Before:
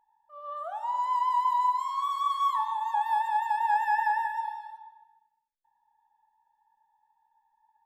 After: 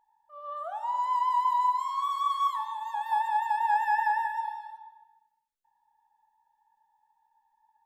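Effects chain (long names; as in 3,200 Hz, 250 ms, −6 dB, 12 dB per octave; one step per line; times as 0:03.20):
0:02.47–0:03.12: high-pass filter 1,300 Hz 6 dB per octave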